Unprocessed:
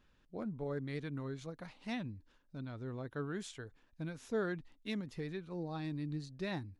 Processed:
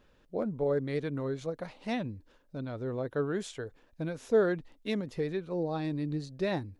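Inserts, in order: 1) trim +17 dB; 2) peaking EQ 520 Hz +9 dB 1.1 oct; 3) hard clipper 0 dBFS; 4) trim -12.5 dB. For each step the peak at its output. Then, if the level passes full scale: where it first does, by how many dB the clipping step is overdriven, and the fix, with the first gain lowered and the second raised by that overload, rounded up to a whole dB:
-9.0 dBFS, -3.5 dBFS, -3.5 dBFS, -16.0 dBFS; nothing clips

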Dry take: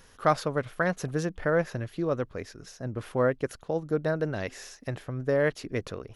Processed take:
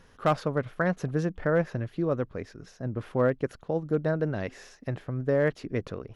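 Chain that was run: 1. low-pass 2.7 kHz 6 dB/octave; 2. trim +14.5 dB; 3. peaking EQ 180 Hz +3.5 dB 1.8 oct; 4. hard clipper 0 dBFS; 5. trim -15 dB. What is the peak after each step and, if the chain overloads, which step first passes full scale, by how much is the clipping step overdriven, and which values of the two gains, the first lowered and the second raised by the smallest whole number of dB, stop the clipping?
-10.0 dBFS, +4.5 dBFS, +5.0 dBFS, 0.0 dBFS, -15.0 dBFS; step 2, 5.0 dB; step 2 +9.5 dB, step 5 -10 dB

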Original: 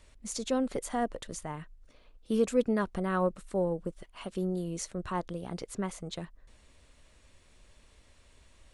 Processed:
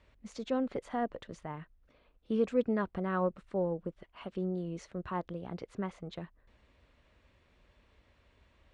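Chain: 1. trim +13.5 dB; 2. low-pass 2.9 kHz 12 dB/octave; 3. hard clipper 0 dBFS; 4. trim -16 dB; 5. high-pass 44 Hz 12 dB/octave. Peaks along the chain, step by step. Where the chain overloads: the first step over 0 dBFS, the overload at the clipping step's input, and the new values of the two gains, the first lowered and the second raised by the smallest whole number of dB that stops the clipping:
-2.0 dBFS, -2.0 dBFS, -2.0 dBFS, -18.0 dBFS, -18.0 dBFS; nothing clips

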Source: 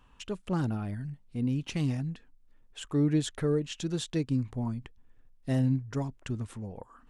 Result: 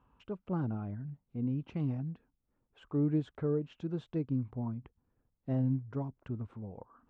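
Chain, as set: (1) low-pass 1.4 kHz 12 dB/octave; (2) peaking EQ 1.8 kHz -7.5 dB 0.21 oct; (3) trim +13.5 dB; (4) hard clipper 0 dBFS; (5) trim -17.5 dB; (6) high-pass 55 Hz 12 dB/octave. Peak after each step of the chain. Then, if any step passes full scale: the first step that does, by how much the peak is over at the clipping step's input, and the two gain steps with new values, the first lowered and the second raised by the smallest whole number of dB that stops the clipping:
-17.0 dBFS, -17.0 dBFS, -3.5 dBFS, -3.5 dBFS, -21.0 dBFS, -22.0 dBFS; nothing clips

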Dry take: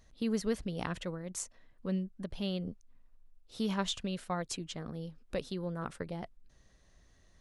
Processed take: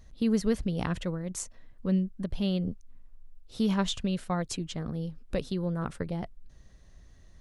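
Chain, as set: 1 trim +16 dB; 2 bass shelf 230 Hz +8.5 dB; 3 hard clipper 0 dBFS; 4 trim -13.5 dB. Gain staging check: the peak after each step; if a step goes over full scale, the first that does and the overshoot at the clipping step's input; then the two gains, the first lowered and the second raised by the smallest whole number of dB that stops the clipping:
-2.5 dBFS, -1.5 dBFS, -1.5 dBFS, -15.0 dBFS; nothing clips

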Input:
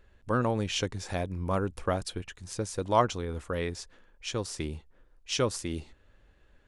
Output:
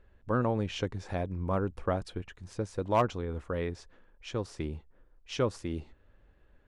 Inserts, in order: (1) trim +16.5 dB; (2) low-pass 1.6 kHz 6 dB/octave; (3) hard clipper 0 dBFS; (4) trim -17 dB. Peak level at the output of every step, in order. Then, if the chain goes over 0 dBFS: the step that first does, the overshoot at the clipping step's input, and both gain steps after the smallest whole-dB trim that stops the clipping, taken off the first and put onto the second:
+7.0 dBFS, +6.0 dBFS, 0.0 dBFS, -17.0 dBFS; step 1, 6.0 dB; step 1 +10.5 dB, step 4 -11 dB

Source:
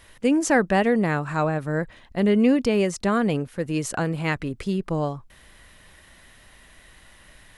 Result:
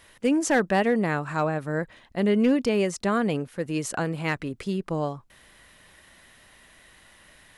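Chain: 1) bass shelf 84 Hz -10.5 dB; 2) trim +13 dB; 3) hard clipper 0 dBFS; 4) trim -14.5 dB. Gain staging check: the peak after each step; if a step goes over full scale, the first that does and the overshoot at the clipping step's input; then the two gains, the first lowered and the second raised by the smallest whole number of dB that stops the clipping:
-8.0 dBFS, +5.0 dBFS, 0.0 dBFS, -14.5 dBFS; step 2, 5.0 dB; step 2 +8 dB, step 4 -9.5 dB

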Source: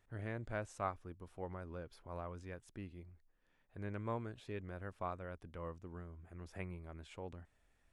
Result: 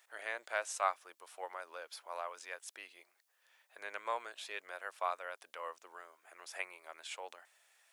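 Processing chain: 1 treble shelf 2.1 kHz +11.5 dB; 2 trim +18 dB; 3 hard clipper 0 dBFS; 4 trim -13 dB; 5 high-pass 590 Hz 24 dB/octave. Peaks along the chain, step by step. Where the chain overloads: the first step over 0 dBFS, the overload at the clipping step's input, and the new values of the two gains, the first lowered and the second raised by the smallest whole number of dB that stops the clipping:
-21.5 dBFS, -3.5 dBFS, -3.5 dBFS, -16.5 dBFS, -17.5 dBFS; nothing clips

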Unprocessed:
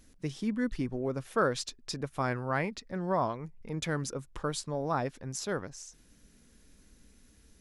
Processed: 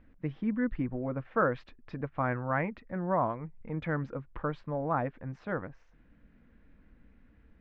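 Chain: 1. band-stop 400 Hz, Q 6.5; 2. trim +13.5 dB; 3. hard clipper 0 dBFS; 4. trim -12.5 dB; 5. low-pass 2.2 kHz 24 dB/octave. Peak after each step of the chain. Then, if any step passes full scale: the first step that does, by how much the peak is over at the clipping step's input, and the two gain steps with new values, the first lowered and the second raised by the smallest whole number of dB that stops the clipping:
-16.0 dBFS, -2.5 dBFS, -2.5 dBFS, -15.0 dBFS, -15.5 dBFS; nothing clips

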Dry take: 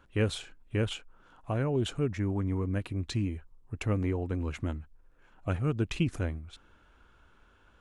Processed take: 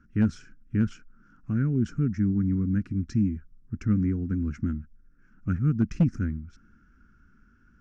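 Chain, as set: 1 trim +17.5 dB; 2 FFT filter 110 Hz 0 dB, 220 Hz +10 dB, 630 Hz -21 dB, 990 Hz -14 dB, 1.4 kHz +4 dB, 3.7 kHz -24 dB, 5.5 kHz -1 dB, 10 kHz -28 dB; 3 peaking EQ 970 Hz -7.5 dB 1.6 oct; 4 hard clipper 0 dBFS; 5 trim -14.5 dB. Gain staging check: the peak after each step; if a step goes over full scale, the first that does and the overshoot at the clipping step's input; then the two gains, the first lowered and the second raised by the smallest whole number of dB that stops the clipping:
+1.0 dBFS, +4.5 dBFS, +4.0 dBFS, 0.0 dBFS, -14.5 dBFS; step 1, 4.0 dB; step 1 +13.5 dB, step 5 -10.5 dB

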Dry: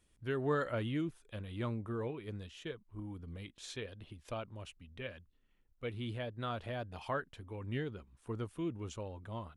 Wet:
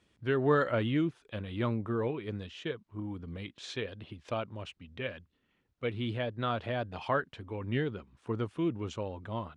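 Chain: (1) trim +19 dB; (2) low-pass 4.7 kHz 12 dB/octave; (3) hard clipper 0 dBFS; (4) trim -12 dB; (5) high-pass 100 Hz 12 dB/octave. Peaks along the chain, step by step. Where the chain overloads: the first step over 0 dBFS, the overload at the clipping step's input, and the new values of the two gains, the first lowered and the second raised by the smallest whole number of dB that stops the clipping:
-3.0 dBFS, -3.0 dBFS, -3.0 dBFS, -15.0 dBFS, -14.5 dBFS; nothing clips

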